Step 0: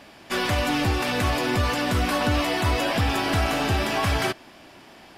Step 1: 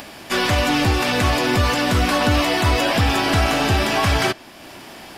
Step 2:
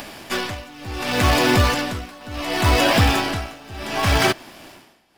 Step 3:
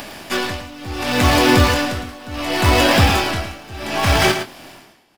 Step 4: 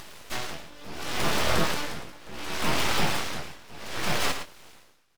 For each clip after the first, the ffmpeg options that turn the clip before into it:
-filter_complex "[0:a]acrossover=split=640|7500[s0][s1][s2];[s2]acompressor=threshold=0.00282:ratio=6[s3];[s0][s1][s3]amix=inputs=3:normalize=0,highshelf=f=7700:g=9,acompressor=mode=upward:threshold=0.0141:ratio=2.5,volume=1.78"
-filter_complex "[0:a]tremolo=f=0.69:d=0.94,asplit=2[s0][s1];[s1]acrusher=bits=4:dc=4:mix=0:aa=0.000001,volume=0.335[s2];[s0][s2]amix=inputs=2:normalize=0"
-filter_complex "[0:a]asplit=2[s0][s1];[s1]adelay=24,volume=0.355[s2];[s0][s2]amix=inputs=2:normalize=0,asplit=2[s3][s4];[s4]aecho=0:1:110:0.355[s5];[s3][s5]amix=inputs=2:normalize=0,volume=1.26"
-af "aeval=exprs='abs(val(0))':c=same,volume=0.355"

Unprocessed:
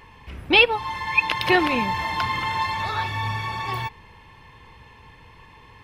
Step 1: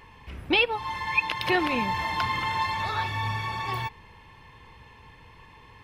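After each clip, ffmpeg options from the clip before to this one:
-af "alimiter=limit=0.355:level=0:latency=1:release=302,volume=0.75"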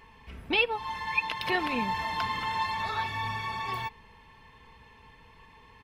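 -af "aecho=1:1:4.5:0.36,volume=0.596"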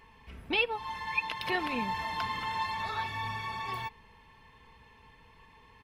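-af "equalizer=f=11000:t=o:w=0.34:g=2,volume=0.708"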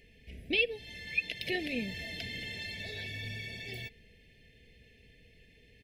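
-af "asuperstop=centerf=1100:order=8:qfactor=0.92"

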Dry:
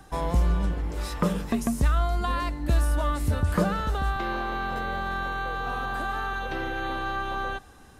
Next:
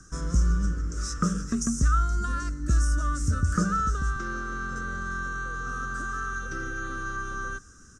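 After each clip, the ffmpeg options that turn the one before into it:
-af "firequalizer=gain_entry='entry(200,0);entry(500,-10);entry(850,-28);entry(1300,7);entry(2100,-14);entry(4100,-12);entry(5800,14);entry(8500,4);entry(12000,-19)':delay=0.05:min_phase=1"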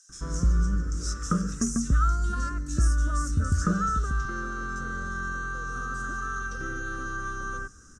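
-filter_complex "[0:a]acrossover=split=2400[s0][s1];[s0]adelay=90[s2];[s2][s1]amix=inputs=2:normalize=0"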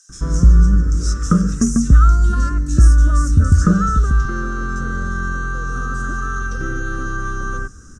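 -af "lowshelf=f=390:g=7.5,volume=2"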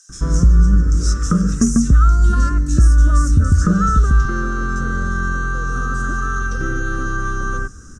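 -af "alimiter=limit=0.501:level=0:latency=1:release=189,volume=1.26"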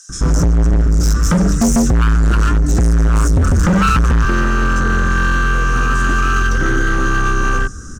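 -af "volume=7.94,asoftclip=hard,volume=0.126,volume=2.51"

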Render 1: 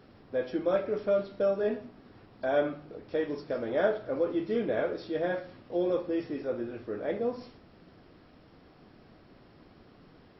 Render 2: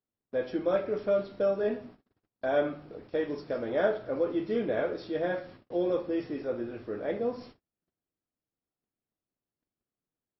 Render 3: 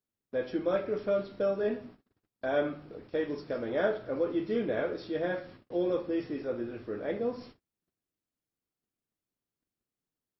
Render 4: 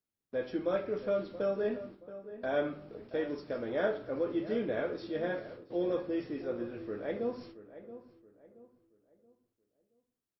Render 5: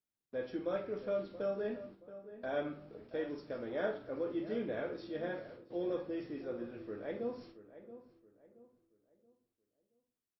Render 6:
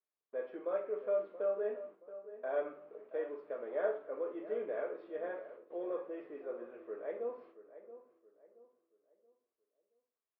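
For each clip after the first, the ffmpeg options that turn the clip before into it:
-af "agate=range=0.0112:threshold=0.00355:ratio=16:detection=peak"
-af "equalizer=f=700:w=1.5:g=-3"
-filter_complex "[0:a]asplit=2[s0][s1];[s1]adelay=676,lowpass=f=1500:p=1,volume=0.211,asplit=2[s2][s3];[s3]adelay=676,lowpass=f=1500:p=1,volume=0.37,asplit=2[s4][s5];[s5]adelay=676,lowpass=f=1500:p=1,volume=0.37,asplit=2[s6][s7];[s7]adelay=676,lowpass=f=1500:p=1,volume=0.37[s8];[s0][s2][s4][s6][s8]amix=inputs=5:normalize=0,volume=0.75"
-filter_complex "[0:a]asplit=2[s0][s1];[s1]adelay=47,volume=0.266[s2];[s0][s2]amix=inputs=2:normalize=0,volume=0.562"
-af "highpass=430,equalizer=f=430:t=q:w=4:g=9,equalizer=f=620:t=q:w=4:g=7,equalizer=f=1100:t=q:w=4:g=8,lowpass=f=2500:w=0.5412,lowpass=f=2500:w=1.3066,volume=0.631"

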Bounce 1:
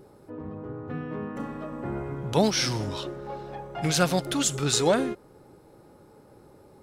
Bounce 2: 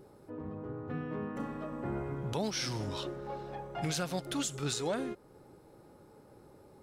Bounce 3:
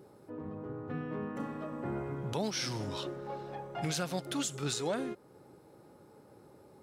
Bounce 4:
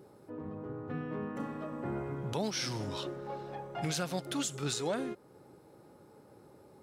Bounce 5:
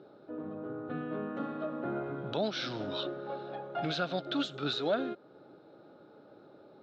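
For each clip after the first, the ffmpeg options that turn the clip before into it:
-af "alimiter=limit=0.112:level=0:latency=1:release=446,volume=0.631"
-af "highpass=89"
-af anull
-af "highpass=160,equalizer=f=300:t=q:w=4:g=4,equalizer=f=640:t=q:w=4:g=8,equalizer=f=970:t=q:w=4:g=-5,equalizer=f=1400:t=q:w=4:g=8,equalizer=f=2000:t=q:w=4:g=-6,equalizer=f=3800:t=q:w=4:g=9,lowpass=f=4000:w=0.5412,lowpass=f=4000:w=1.3066"

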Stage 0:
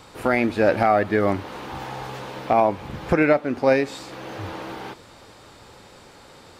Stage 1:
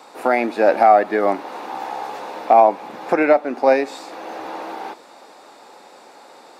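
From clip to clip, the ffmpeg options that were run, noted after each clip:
-af "highpass=f=240:w=0.5412,highpass=f=240:w=1.3066,equalizer=f=770:w=1.8:g=8.5,bandreject=f=3100:w=12"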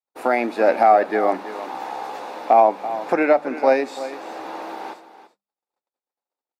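-af "agate=range=0.00141:threshold=0.0126:ratio=16:detection=peak,bandreject=f=50:t=h:w=6,bandreject=f=100:t=h:w=6,bandreject=f=150:t=h:w=6,bandreject=f=200:t=h:w=6,aecho=1:1:335:0.211,volume=0.794"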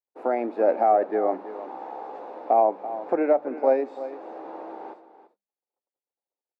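-af "bandpass=f=440:t=q:w=1:csg=0,volume=0.75"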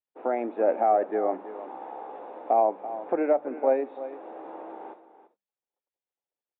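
-af "aresample=8000,aresample=44100,volume=0.75"

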